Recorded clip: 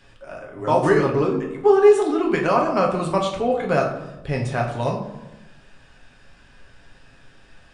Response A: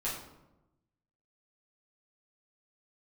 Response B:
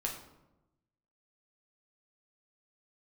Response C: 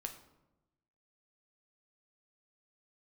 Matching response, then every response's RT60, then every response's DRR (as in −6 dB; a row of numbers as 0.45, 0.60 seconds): B; 0.95, 0.95, 1.0 seconds; −9.5, −1.0, 4.5 decibels